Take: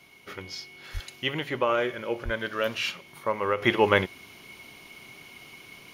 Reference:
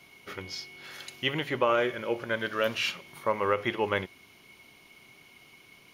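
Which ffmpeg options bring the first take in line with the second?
-filter_complex "[0:a]asplit=3[a][b][c];[a]afade=t=out:st=0.93:d=0.02[d];[b]highpass=f=140:w=0.5412,highpass=f=140:w=1.3066,afade=t=in:st=0.93:d=0.02,afade=t=out:st=1.05:d=0.02[e];[c]afade=t=in:st=1.05:d=0.02[f];[d][e][f]amix=inputs=3:normalize=0,asplit=3[g][h][i];[g]afade=t=out:st=2.24:d=0.02[j];[h]highpass=f=140:w=0.5412,highpass=f=140:w=1.3066,afade=t=in:st=2.24:d=0.02,afade=t=out:st=2.36:d=0.02[k];[i]afade=t=in:st=2.36:d=0.02[l];[j][k][l]amix=inputs=3:normalize=0,asetnsamples=n=441:p=0,asendcmd='3.62 volume volume -7.5dB',volume=0dB"

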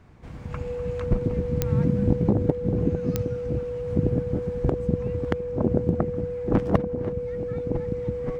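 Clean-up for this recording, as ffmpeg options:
-af "adeclick=t=4,bandreject=f=490:w=30"

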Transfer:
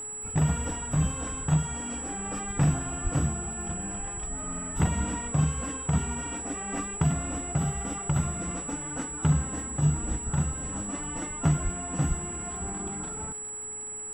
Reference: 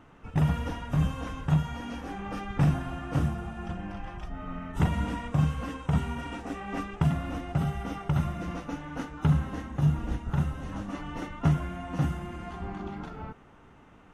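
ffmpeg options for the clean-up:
-filter_complex "[0:a]adeclick=t=4,bandreject=f=424.3:t=h:w=4,bandreject=f=848.6:t=h:w=4,bandreject=f=1.2729k:t=h:w=4,bandreject=f=1.6972k:t=h:w=4,bandreject=f=2.1215k:t=h:w=4,bandreject=f=7.8k:w=30,asplit=3[a][b][c];[a]afade=t=out:st=3.03:d=0.02[d];[b]highpass=f=140:w=0.5412,highpass=f=140:w=1.3066,afade=t=in:st=3.03:d=0.02,afade=t=out:st=3.15:d=0.02[e];[c]afade=t=in:st=3.15:d=0.02[f];[d][e][f]amix=inputs=3:normalize=0,asplit=3[g][h][i];[g]afade=t=out:st=11.63:d=0.02[j];[h]highpass=f=140:w=0.5412,highpass=f=140:w=1.3066,afade=t=in:st=11.63:d=0.02,afade=t=out:st=11.75:d=0.02[k];[i]afade=t=in:st=11.75:d=0.02[l];[j][k][l]amix=inputs=3:normalize=0,asplit=3[m][n][o];[m]afade=t=out:st=12.08:d=0.02[p];[n]highpass=f=140:w=0.5412,highpass=f=140:w=1.3066,afade=t=in:st=12.08:d=0.02,afade=t=out:st=12.2:d=0.02[q];[o]afade=t=in:st=12.2:d=0.02[r];[p][q][r]amix=inputs=3:normalize=0"

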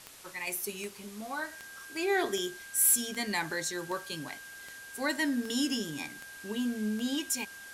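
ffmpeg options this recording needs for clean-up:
-af "adeclick=t=4,bandreject=f=1.6k:w=30,afftdn=nr=30:nf=-47"

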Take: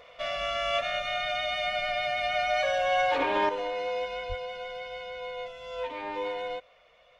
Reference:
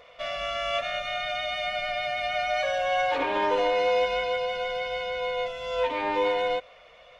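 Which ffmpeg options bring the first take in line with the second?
-filter_complex "[0:a]asplit=3[a][b][c];[a]afade=t=out:st=4.28:d=0.02[d];[b]highpass=f=140:w=0.5412,highpass=f=140:w=1.3066,afade=t=in:st=4.28:d=0.02,afade=t=out:st=4.4:d=0.02[e];[c]afade=t=in:st=4.4:d=0.02[f];[d][e][f]amix=inputs=3:normalize=0,asetnsamples=n=441:p=0,asendcmd='3.49 volume volume 8dB',volume=0dB"

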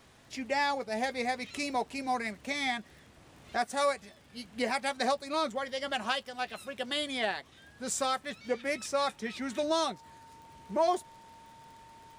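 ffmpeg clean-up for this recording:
-af "adeclick=t=4,bandreject=f=910:w=30"

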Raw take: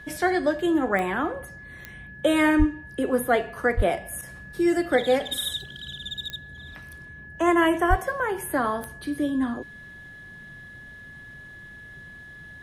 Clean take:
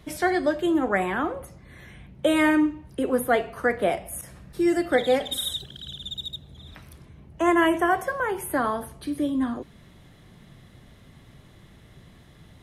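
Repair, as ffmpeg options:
-filter_complex "[0:a]adeclick=t=4,bandreject=f=1.7k:w=30,asplit=3[a][b][c];[a]afade=t=out:st=2.58:d=0.02[d];[b]highpass=f=140:w=0.5412,highpass=f=140:w=1.3066,afade=t=in:st=2.58:d=0.02,afade=t=out:st=2.7:d=0.02[e];[c]afade=t=in:st=2.7:d=0.02[f];[d][e][f]amix=inputs=3:normalize=0,asplit=3[g][h][i];[g]afade=t=out:st=3.76:d=0.02[j];[h]highpass=f=140:w=0.5412,highpass=f=140:w=1.3066,afade=t=in:st=3.76:d=0.02,afade=t=out:st=3.88:d=0.02[k];[i]afade=t=in:st=3.88:d=0.02[l];[j][k][l]amix=inputs=3:normalize=0,asplit=3[m][n][o];[m]afade=t=out:st=7.89:d=0.02[p];[n]highpass=f=140:w=0.5412,highpass=f=140:w=1.3066,afade=t=in:st=7.89:d=0.02,afade=t=out:st=8.01:d=0.02[q];[o]afade=t=in:st=8.01:d=0.02[r];[p][q][r]amix=inputs=3:normalize=0"

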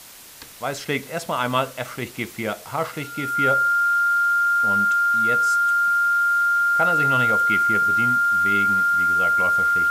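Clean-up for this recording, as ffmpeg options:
-af "bandreject=f=1.4k:w=30,afftdn=nr=29:nf=-39"

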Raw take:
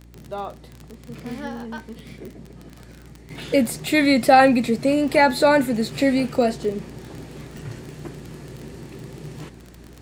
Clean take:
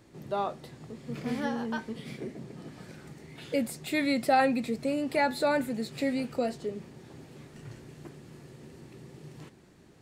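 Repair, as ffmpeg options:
-af "adeclick=t=4,bandreject=f=58.9:t=h:w=4,bandreject=f=117.8:t=h:w=4,bandreject=f=176.7:t=h:w=4,bandreject=f=235.6:t=h:w=4,bandreject=f=294.5:t=h:w=4,asetnsamples=n=441:p=0,asendcmd='3.3 volume volume -10.5dB',volume=0dB"

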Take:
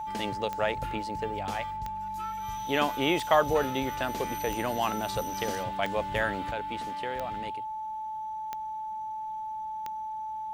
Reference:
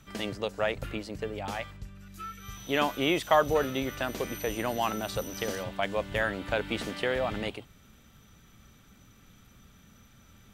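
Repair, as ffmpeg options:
-af "adeclick=t=4,bandreject=f=870:w=30,asetnsamples=n=441:p=0,asendcmd='6.51 volume volume 7.5dB',volume=0dB"

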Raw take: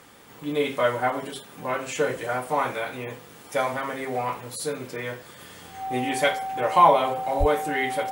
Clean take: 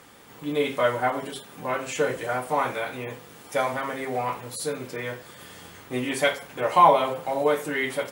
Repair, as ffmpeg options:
-filter_complex "[0:a]bandreject=f=770:w=30,asplit=3[a][b][c];[a]afade=t=out:st=7.39:d=0.02[d];[b]highpass=f=140:w=0.5412,highpass=f=140:w=1.3066,afade=t=in:st=7.39:d=0.02,afade=t=out:st=7.51:d=0.02[e];[c]afade=t=in:st=7.51:d=0.02[f];[d][e][f]amix=inputs=3:normalize=0"

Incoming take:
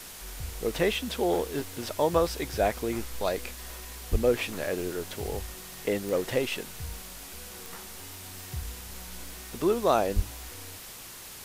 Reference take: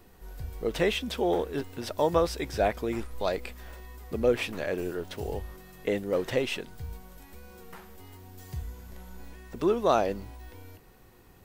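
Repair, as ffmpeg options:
-filter_complex "[0:a]adeclick=t=4,asplit=3[a][b][c];[a]afade=t=out:st=4.11:d=0.02[d];[b]highpass=f=140:w=0.5412,highpass=f=140:w=1.3066,afade=t=in:st=4.11:d=0.02,afade=t=out:st=4.23:d=0.02[e];[c]afade=t=in:st=4.23:d=0.02[f];[d][e][f]amix=inputs=3:normalize=0,asplit=3[g][h][i];[g]afade=t=out:st=10.15:d=0.02[j];[h]highpass=f=140:w=0.5412,highpass=f=140:w=1.3066,afade=t=in:st=10.15:d=0.02,afade=t=out:st=10.27:d=0.02[k];[i]afade=t=in:st=10.27:d=0.02[l];[j][k][l]amix=inputs=3:normalize=0,afwtdn=0.0071"

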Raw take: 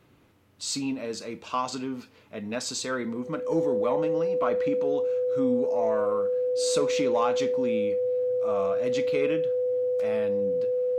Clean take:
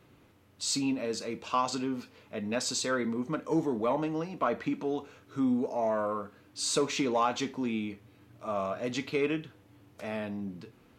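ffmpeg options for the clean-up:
-af "bandreject=f=500:w=30"

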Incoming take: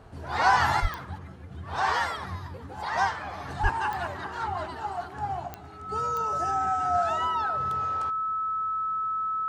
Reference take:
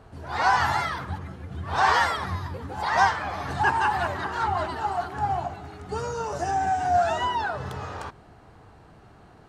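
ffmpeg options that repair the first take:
-filter_complex "[0:a]adeclick=t=4,bandreject=f=1.3k:w=30,asplit=3[a][b][c];[a]afade=t=out:st=0.81:d=0.02[d];[b]highpass=f=140:w=0.5412,highpass=f=140:w=1.3066,afade=t=in:st=0.81:d=0.02,afade=t=out:st=0.93:d=0.02[e];[c]afade=t=in:st=0.93:d=0.02[f];[d][e][f]amix=inputs=3:normalize=0,asplit=3[g][h][i];[g]afade=t=out:st=3.62:d=0.02[j];[h]highpass=f=140:w=0.5412,highpass=f=140:w=1.3066,afade=t=in:st=3.62:d=0.02,afade=t=out:st=3.74:d=0.02[k];[i]afade=t=in:st=3.74:d=0.02[l];[j][k][l]amix=inputs=3:normalize=0,asetnsamples=n=441:p=0,asendcmd='0.8 volume volume 5.5dB',volume=0dB"

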